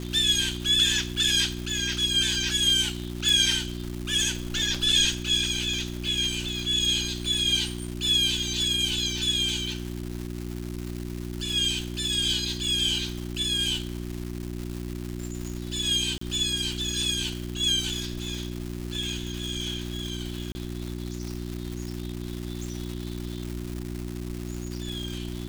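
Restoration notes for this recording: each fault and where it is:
crackle 460 per s -32 dBFS
hum 60 Hz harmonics 6 -34 dBFS
3.29 s: pop
16.18–16.21 s: dropout 34 ms
20.52–20.55 s: dropout 30 ms

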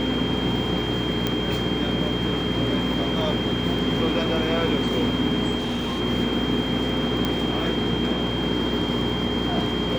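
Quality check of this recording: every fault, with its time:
crackle 11 per s
hum 60 Hz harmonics 7 -28 dBFS
whine 3.2 kHz -30 dBFS
1.27 s: pop -9 dBFS
5.58–6.01 s: clipped -22.5 dBFS
7.25 s: pop -10 dBFS

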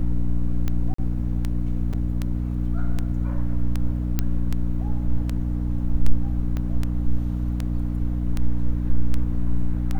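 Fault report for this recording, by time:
hum 60 Hz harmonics 5 -25 dBFS
tick 78 rpm -13 dBFS
0.94–0.98 s: dropout 44 ms
1.93–1.94 s: dropout 5.2 ms
4.19 s: pop -8 dBFS
6.57 s: pop -17 dBFS

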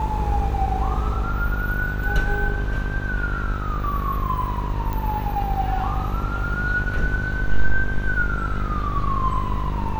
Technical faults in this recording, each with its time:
buzz 50 Hz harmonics 28 -26 dBFS
4.93 s: pop -15 dBFS

